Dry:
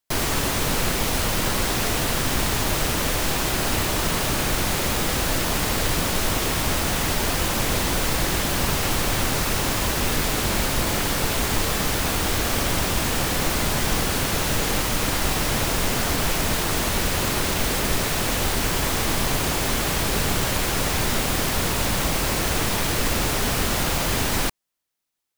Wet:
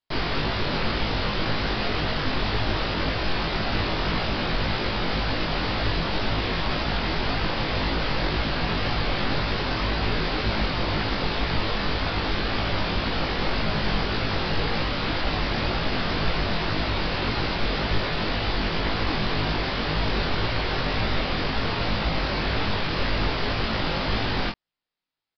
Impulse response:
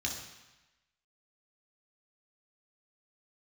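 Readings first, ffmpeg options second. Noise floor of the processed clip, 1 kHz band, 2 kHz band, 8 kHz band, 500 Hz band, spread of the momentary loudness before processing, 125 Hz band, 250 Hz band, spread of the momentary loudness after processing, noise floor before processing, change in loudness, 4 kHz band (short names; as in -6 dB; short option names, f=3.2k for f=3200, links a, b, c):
-28 dBFS, -1.5 dB, -1.5 dB, -29.0 dB, -1.5 dB, 0 LU, -1.5 dB, -1.5 dB, 1 LU, -25 dBFS, -3.5 dB, -2.0 dB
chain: -filter_complex "[0:a]flanger=delay=17.5:depth=7.3:speed=1.9,asplit=2[a][b];[b]adelay=19,volume=-4.5dB[c];[a][c]amix=inputs=2:normalize=0,aresample=11025,aresample=44100"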